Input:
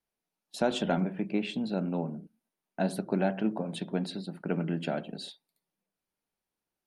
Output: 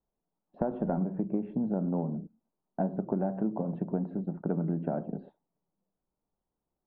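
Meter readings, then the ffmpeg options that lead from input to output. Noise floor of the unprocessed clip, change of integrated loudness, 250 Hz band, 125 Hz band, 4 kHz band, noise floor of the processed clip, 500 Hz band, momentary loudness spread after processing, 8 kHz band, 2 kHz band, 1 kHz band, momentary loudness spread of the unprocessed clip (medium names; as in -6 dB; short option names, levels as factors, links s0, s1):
under -85 dBFS, -0.5 dB, +0.5 dB, +1.5 dB, under -35 dB, under -85 dBFS, -1.5 dB, 7 LU, under -30 dB, under -10 dB, -2.5 dB, 12 LU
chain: -af "lowpass=f=1100:w=0.5412,lowpass=f=1100:w=1.3066,lowshelf=f=120:g=8.5,acompressor=threshold=0.0355:ratio=6,volume=1.41"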